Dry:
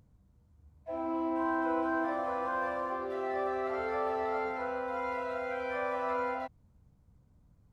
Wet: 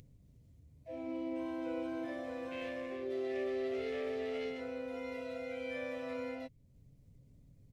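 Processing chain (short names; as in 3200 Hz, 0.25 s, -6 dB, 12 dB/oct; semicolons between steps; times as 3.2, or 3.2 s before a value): 2.51–4.6 self-modulated delay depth 0.11 ms; band shelf 1100 Hz -14 dB 1.3 oct; comb 7.4 ms, depth 46%; dynamic EQ 720 Hz, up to -6 dB, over -52 dBFS, Q 1.6; upward compressor, threshold -52 dBFS; gain -1.5 dB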